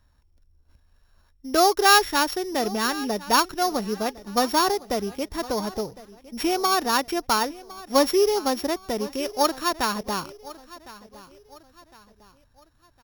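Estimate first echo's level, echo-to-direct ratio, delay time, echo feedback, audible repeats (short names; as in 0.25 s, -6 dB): -19.0 dB, -18.5 dB, 1.058 s, 40%, 3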